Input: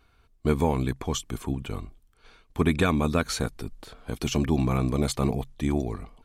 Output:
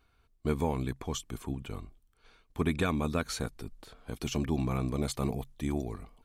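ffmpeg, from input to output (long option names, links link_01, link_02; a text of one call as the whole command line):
ffmpeg -i in.wav -af "asetnsamples=nb_out_samples=441:pad=0,asendcmd='5.15 highshelf g 10.5',highshelf=frequency=11000:gain=2,volume=-6.5dB" out.wav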